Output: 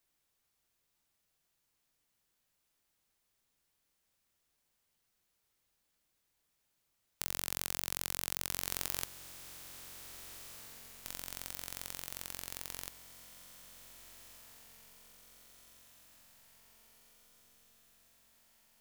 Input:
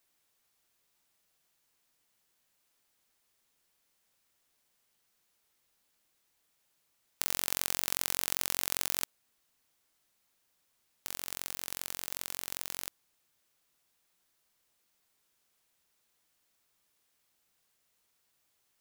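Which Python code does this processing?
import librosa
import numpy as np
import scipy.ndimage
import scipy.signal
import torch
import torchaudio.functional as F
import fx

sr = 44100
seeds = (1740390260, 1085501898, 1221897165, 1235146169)

y = fx.low_shelf(x, sr, hz=160.0, db=8.5)
y = fx.echo_diffused(y, sr, ms=1687, feedback_pct=58, wet_db=-12.0)
y = y * librosa.db_to_amplitude(-5.0)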